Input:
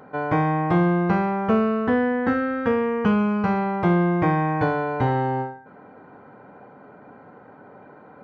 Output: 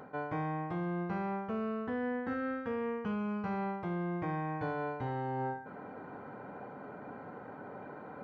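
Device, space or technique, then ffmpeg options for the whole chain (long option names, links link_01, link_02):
compression on the reversed sound: -af "areverse,acompressor=threshold=-33dB:ratio=10,areverse"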